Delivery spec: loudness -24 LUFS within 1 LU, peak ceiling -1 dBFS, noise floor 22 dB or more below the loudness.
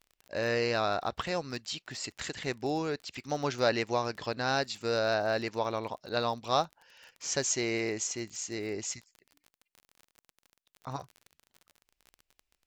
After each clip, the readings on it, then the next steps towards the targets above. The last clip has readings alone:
tick rate 30 per s; loudness -32.5 LUFS; peak level -11.5 dBFS; loudness target -24.0 LUFS
-> de-click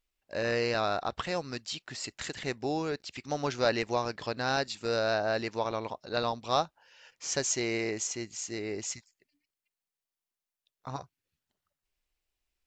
tick rate 0 per s; loudness -32.5 LUFS; peak level -11.5 dBFS; loudness target -24.0 LUFS
-> trim +8.5 dB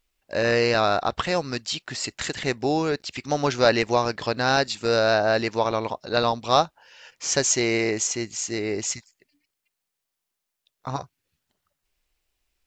loudness -24.0 LUFS; peak level -3.0 dBFS; noise floor -83 dBFS

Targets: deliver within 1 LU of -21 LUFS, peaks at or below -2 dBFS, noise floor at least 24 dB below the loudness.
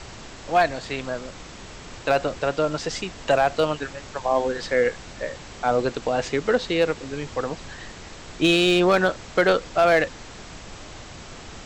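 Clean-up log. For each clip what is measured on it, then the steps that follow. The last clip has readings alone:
clipped samples 0.2%; clipping level -10.5 dBFS; noise floor -41 dBFS; noise floor target -47 dBFS; loudness -23.0 LUFS; peak level -10.5 dBFS; loudness target -21.0 LUFS
-> clip repair -10.5 dBFS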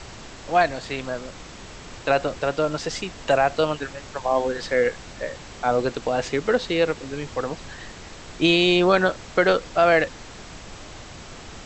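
clipped samples 0.0%; noise floor -41 dBFS; noise floor target -47 dBFS
-> noise print and reduce 6 dB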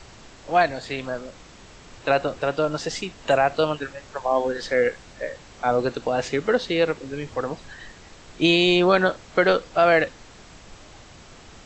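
noise floor -47 dBFS; loudness -22.5 LUFS; peak level -5.0 dBFS; loudness target -21.0 LUFS
-> trim +1.5 dB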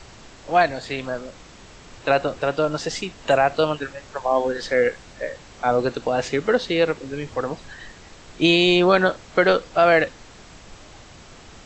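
loudness -21.0 LUFS; peak level -3.5 dBFS; noise floor -46 dBFS

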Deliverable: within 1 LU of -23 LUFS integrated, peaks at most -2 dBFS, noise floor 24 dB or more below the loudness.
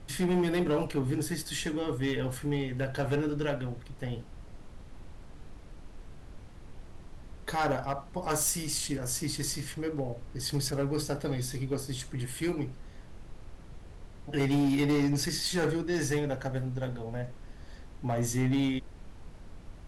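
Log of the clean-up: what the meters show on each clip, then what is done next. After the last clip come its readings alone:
clipped samples 1.3%; clipping level -22.5 dBFS; noise floor -49 dBFS; noise floor target -56 dBFS; loudness -31.5 LUFS; peak level -22.5 dBFS; loudness target -23.0 LUFS
-> clip repair -22.5 dBFS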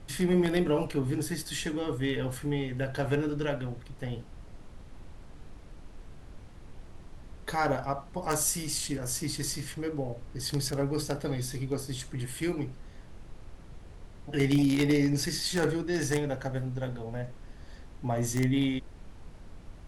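clipped samples 0.0%; noise floor -49 dBFS; noise floor target -55 dBFS
-> noise print and reduce 6 dB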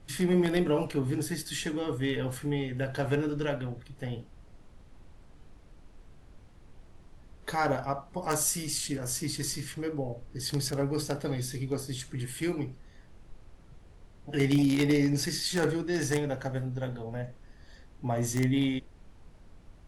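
noise floor -54 dBFS; noise floor target -55 dBFS
-> noise print and reduce 6 dB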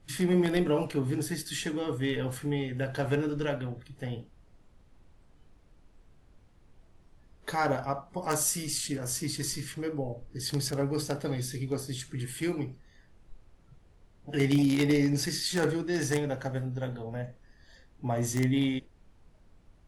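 noise floor -60 dBFS; loudness -30.5 LUFS; peak level -13.0 dBFS; loudness target -23.0 LUFS
-> trim +7.5 dB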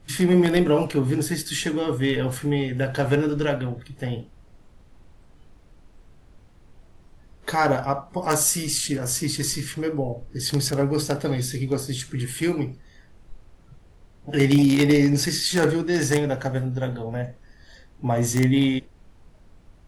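loudness -23.0 LUFS; peak level -5.5 dBFS; noise floor -53 dBFS

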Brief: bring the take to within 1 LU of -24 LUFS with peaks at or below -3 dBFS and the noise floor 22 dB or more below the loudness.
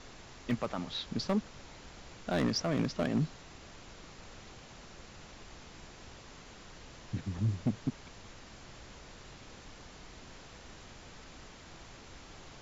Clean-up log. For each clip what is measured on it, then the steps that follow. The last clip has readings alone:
clipped samples 0.4%; clipping level -23.0 dBFS; noise floor -53 dBFS; noise floor target -57 dBFS; loudness -34.5 LUFS; peak level -23.0 dBFS; loudness target -24.0 LUFS
-> clip repair -23 dBFS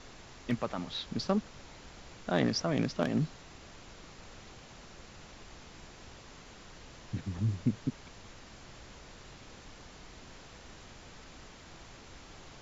clipped samples 0.0%; noise floor -53 dBFS; noise floor target -56 dBFS
-> noise print and reduce 6 dB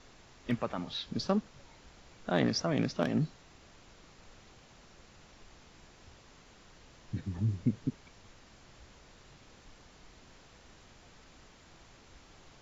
noise floor -59 dBFS; loudness -33.5 LUFS; peak level -14.0 dBFS; loudness target -24.0 LUFS
-> trim +9.5 dB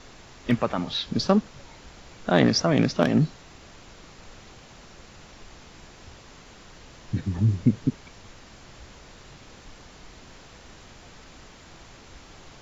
loudness -24.0 LUFS; peak level -4.5 dBFS; noise floor -49 dBFS

